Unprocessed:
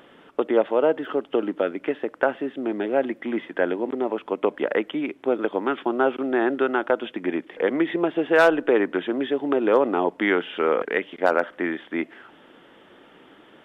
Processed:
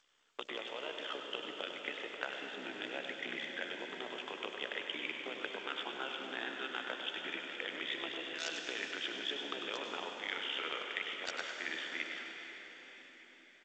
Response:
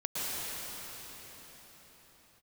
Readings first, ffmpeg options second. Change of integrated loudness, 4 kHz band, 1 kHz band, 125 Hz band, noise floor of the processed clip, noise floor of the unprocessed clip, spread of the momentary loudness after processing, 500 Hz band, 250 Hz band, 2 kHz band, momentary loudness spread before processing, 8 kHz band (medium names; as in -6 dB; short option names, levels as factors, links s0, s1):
-16.0 dB, +1.5 dB, -17.5 dB, -21.5 dB, -60 dBFS, -53 dBFS, 6 LU, -24.0 dB, -24.5 dB, -11.0 dB, 9 LU, no reading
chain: -filter_complex "[0:a]highpass=100,agate=range=0.0708:threshold=0.00708:ratio=16:detection=peak,acrossover=split=130|3000[s0][s1][s2];[s1]acompressor=threshold=0.0224:ratio=8[s3];[s0][s3][s2]amix=inputs=3:normalize=0,aderivative,areverse,acompressor=threshold=0.00398:ratio=16,areverse,tremolo=f=66:d=0.857,aecho=1:1:99:0.376,asplit=2[s4][s5];[1:a]atrim=start_sample=2205[s6];[s5][s6]afir=irnorm=-1:irlink=0,volume=0.398[s7];[s4][s7]amix=inputs=2:normalize=0,volume=5.01" -ar 16000 -c:a g722